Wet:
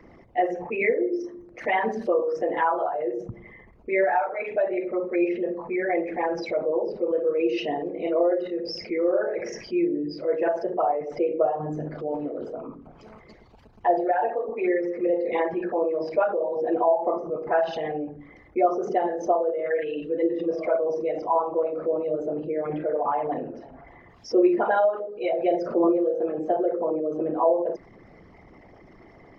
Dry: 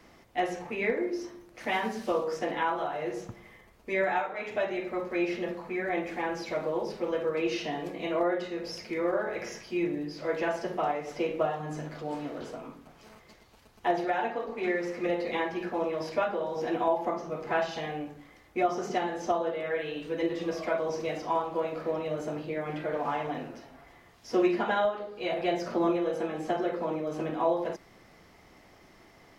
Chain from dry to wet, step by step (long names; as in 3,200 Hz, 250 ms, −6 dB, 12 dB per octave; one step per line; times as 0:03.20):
spectral envelope exaggerated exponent 2
level +6 dB